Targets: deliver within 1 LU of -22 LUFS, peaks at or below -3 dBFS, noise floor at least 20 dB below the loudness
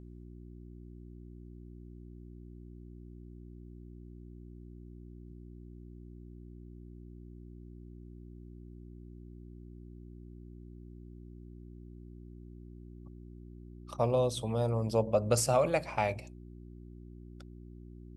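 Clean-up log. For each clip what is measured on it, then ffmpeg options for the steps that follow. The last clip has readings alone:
hum 60 Hz; highest harmonic 360 Hz; hum level -46 dBFS; loudness -30.5 LUFS; peak level -13.0 dBFS; loudness target -22.0 LUFS
-> -af "bandreject=f=60:t=h:w=4,bandreject=f=120:t=h:w=4,bandreject=f=180:t=h:w=4,bandreject=f=240:t=h:w=4,bandreject=f=300:t=h:w=4,bandreject=f=360:t=h:w=4"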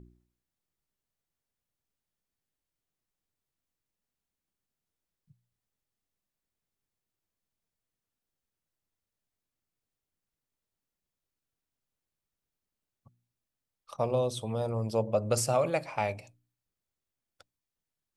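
hum not found; loudness -30.5 LUFS; peak level -14.0 dBFS; loudness target -22.0 LUFS
-> -af "volume=2.66"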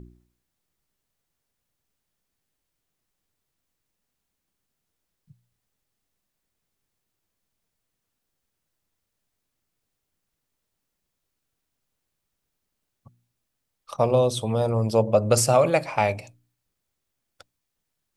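loudness -22.0 LUFS; peak level -5.5 dBFS; noise floor -81 dBFS

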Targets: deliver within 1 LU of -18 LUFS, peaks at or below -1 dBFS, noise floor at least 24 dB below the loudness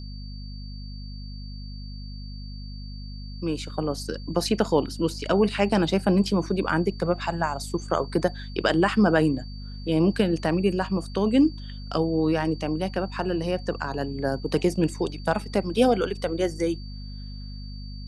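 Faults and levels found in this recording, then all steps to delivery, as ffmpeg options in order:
hum 50 Hz; highest harmonic 250 Hz; hum level -34 dBFS; steady tone 4.6 kHz; tone level -46 dBFS; loudness -25.0 LUFS; peak level -7.0 dBFS; loudness target -18.0 LUFS
-> -af "bandreject=f=50:t=h:w=6,bandreject=f=100:t=h:w=6,bandreject=f=150:t=h:w=6,bandreject=f=200:t=h:w=6,bandreject=f=250:t=h:w=6"
-af "bandreject=f=4600:w=30"
-af "volume=2.24,alimiter=limit=0.891:level=0:latency=1"

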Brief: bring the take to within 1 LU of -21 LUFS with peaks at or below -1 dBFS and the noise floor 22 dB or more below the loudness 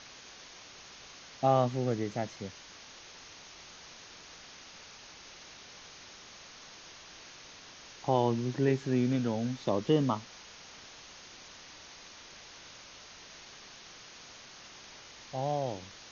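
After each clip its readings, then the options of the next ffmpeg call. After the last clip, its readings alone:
noise floor -52 dBFS; noise floor target -53 dBFS; loudness -31.0 LUFS; peak level -13.5 dBFS; loudness target -21.0 LUFS
-> -af "afftdn=nr=6:nf=-52"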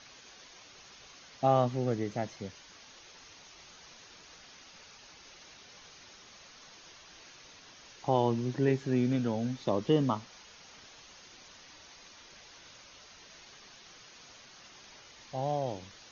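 noise floor -55 dBFS; loudness -31.0 LUFS; peak level -13.5 dBFS; loudness target -21.0 LUFS
-> -af "volume=3.16"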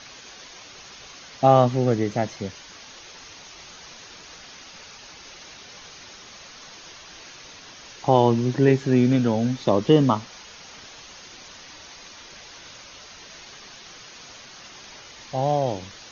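loudness -21.0 LUFS; peak level -3.5 dBFS; noise floor -45 dBFS

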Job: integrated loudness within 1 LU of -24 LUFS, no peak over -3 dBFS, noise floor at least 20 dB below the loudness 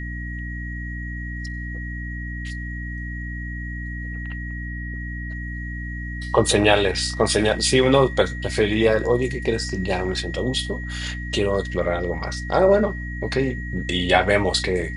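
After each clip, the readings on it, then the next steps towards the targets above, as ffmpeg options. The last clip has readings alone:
hum 60 Hz; highest harmonic 300 Hz; hum level -28 dBFS; steady tone 1.9 kHz; tone level -34 dBFS; loudness -23.0 LUFS; peak level -2.0 dBFS; loudness target -24.0 LUFS
-> -af "bandreject=f=60:t=h:w=4,bandreject=f=120:t=h:w=4,bandreject=f=180:t=h:w=4,bandreject=f=240:t=h:w=4,bandreject=f=300:t=h:w=4"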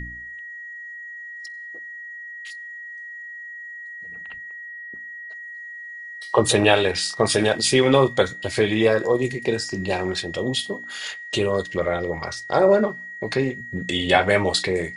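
hum not found; steady tone 1.9 kHz; tone level -34 dBFS
-> -af "bandreject=f=1900:w=30"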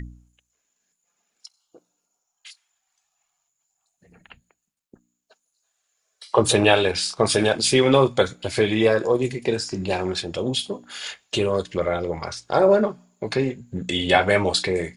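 steady tone not found; loudness -21.5 LUFS; peak level -2.0 dBFS; loudness target -24.0 LUFS
-> -af "volume=0.75"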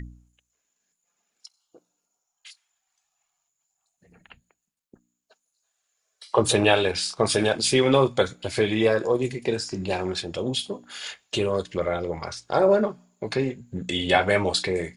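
loudness -24.0 LUFS; peak level -4.5 dBFS; noise floor -80 dBFS

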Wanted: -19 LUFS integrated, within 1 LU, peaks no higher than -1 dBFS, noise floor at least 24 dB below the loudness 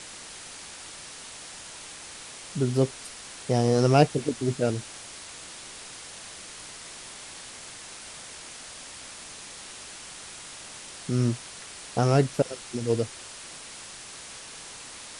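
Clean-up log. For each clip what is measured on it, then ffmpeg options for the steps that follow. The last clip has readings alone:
noise floor -43 dBFS; noise floor target -55 dBFS; loudness -30.5 LUFS; peak level -5.5 dBFS; loudness target -19.0 LUFS
-> -af "afftdn=nr=12:nf=-43"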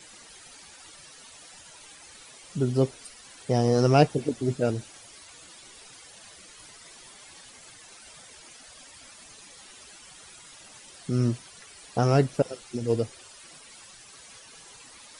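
noise floor -50 dBFS; loudness -26.0 LUFS; peak level -5.5 dBFS; loudness target -19.0 LUFS
-> -af "volume=2.24,alimiter=limit=0.891:level=0:latency=1"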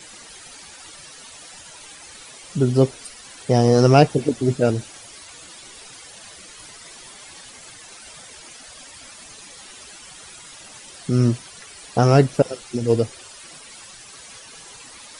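loudness -19.0 LUFS; peak level -1.0 dBFS; noise floor -43 dBFS

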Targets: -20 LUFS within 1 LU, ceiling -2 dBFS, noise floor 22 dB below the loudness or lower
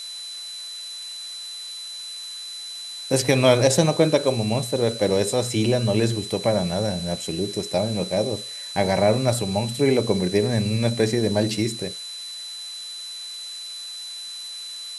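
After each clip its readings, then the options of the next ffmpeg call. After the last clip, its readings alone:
steady tone 4 kHz; tone level -33 dBFS; noise floor -35 dBFS; noise floor target -46 dBFS; loudness -23.5 LUFS; peak level -3.5 dBFS; loudness target -20.0 LUFS
-> -af "bandreject=f=4000:w=30"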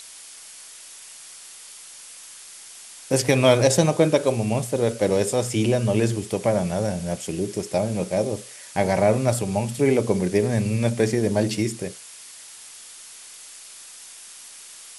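steady tone not found; noise floor -43 dBFS; noise floor target -44 dBFS
-> -af "afftdn=nr=6:nf=-43"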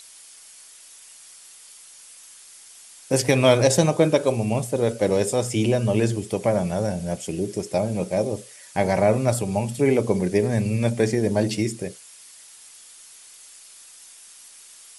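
noise floor -47 dBFS; loudness -22.5 LUFS; peak level -3.5 dBFS; loudness target -20.0 LUFS
-> -af "volume=1.33,alimiter=limit=0.794:level=0:latency=1"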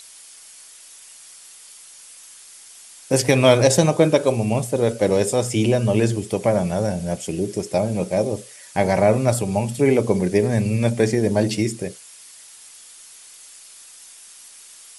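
loudness -20.0 LUFS; peak level -2.0 dBFS; noise floor -45 dBFS

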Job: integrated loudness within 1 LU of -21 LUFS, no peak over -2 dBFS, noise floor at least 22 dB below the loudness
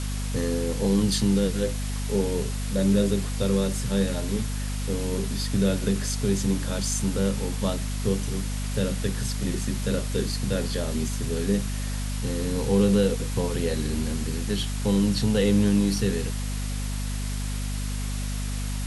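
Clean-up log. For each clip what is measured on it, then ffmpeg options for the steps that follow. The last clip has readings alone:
hum 50 Hz; highest harmonic 250 Hz; hum level -26 dBFS; noise floor -29 dBFS; noise floor target -48 dBFS; loudness -26.0 LUFS; peak level -9.5 dBFS; loudness target -21.0 LUFS
-> -af "bandreject=f=50:t=h:w=6,bandreject=f=100:t=h:w=6,bandreject=f=150:t=h:w=6,bandreject=f=200:t=h:w=6,bandreject=f=250:t=h:w=6"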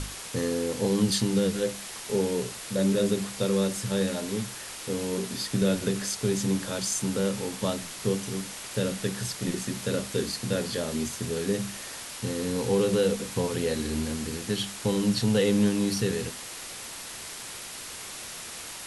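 hum not found; noise floor -40 dBFS; noise floor target -51 dBFS
-> -af "afftdn=nr=11:nf=-40"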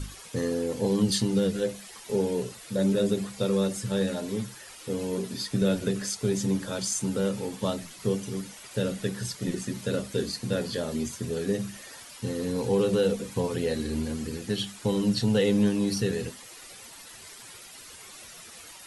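noise floor -47 dBFS; noise floor target -51 dBFS
-> -af "afftdn=nr=6:nf=-47"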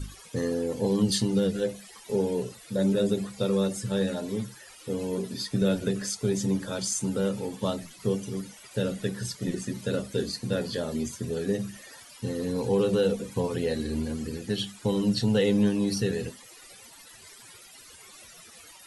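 noise floor -50 dBFS; noise floor target -51 dBFS
-> -af "afftdn=nr=6:nf=-50"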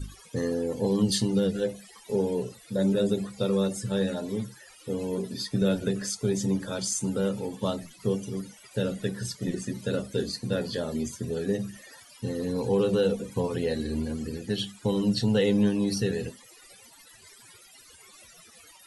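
noise floor -53 dBFS; loudness -28.5 LUFS; peak level -13.0 dBFS; loudness target -21.0 LUFS
-> -af "volume=2.37"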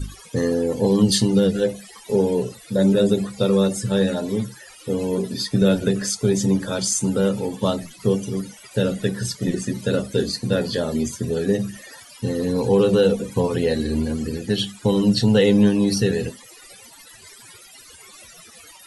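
loudness -21.0 LUFS; peak level -5.5 dBFS; noise floor -46 dBFS

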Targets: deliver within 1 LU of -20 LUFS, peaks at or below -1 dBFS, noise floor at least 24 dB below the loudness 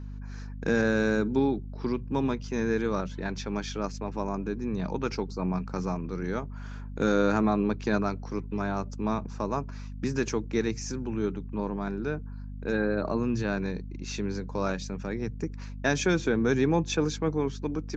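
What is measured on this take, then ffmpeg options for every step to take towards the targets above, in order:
hum 50 Hz; highest harmonic 250 Hz; hum level -36 dBFS; loudness -29.5 LUFS; peak level -12.5 dBFS; loudness target -20.0 LUFS
-> -af "bandreject=f=50:t=h:w=4,bandreject=f=100:t=h:w=4,bandreject=f=150:t=h:w=4,bandreject=f=200:t=h:w=4,bandreject=f=250:t=h:w=4"
-af "volume=2.99"

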